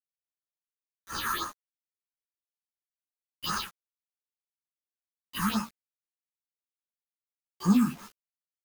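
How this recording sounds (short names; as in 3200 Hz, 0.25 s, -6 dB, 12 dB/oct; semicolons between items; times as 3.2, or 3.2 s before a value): aliases and images of a low sample rate 7800 Hz, jitter 0%; phasing stages 4, 2.9 Hz, lowest notch 530–3500 Hz; a quantiser's noise floor 8-bit, dither none; a shimmering, thickened sound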